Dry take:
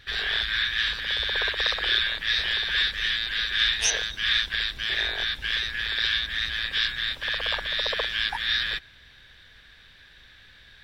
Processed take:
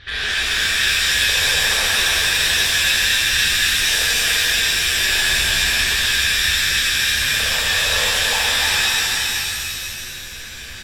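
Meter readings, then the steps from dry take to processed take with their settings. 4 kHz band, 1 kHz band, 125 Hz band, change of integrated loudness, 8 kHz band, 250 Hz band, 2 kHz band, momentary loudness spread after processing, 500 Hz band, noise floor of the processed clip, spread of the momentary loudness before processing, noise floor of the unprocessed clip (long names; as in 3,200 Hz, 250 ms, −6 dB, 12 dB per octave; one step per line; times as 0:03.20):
+8.0 dB, +10.0 dB, +11.5 dB, +9.0 dB, +17.0 dB, +12.5 dB, +9.0 dB, 7 LU, +8.0 dB, −33 dBFS, 4 LU, −53 dBFS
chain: in parallel at +2 dB: downward compressor, threshold −37 dBFS, peak gain reduction 17.5 dB
on the sum: low-pass filter 5,100 Hz 12 dB per octave
brickwall limiter −15.5 dBFS, peak gain reduction 6.5 dB
on a send: bouncing-ball delay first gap 290 ms, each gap 0.8×, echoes 5
on the sum: soft clipping −19.5 dBFS, distortion −16 dB
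reverb with rising layers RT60 1.9 s, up +7 semitones, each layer −2 dB, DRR −5.5 dB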